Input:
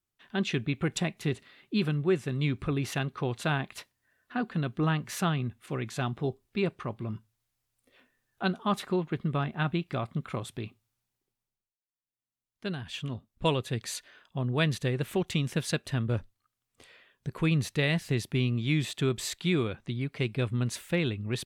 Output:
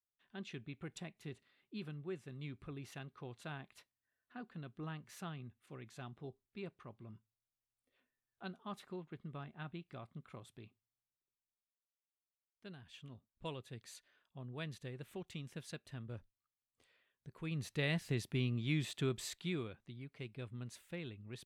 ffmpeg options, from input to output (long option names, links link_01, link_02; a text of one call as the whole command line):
ffmpeg -i in.wav -af "volume=-8.5dB,afade=type=in:start_time=17.42:duration=0.46:silence=0.334965,afade=type=out:start_time=19.05:duration=0.8:silence=0.354813" out.wav